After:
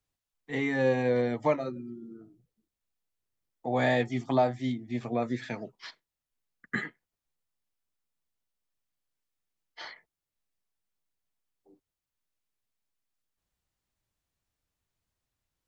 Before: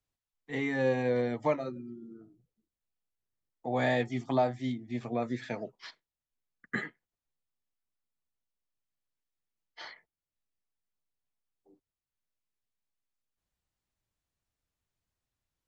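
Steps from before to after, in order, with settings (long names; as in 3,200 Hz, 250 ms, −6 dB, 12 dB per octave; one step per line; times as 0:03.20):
0:05.44–0:06.85: dynamic equaliser 560 Hz, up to −6 dB, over −51 dBFS, Q 1.3
level +2.5 dB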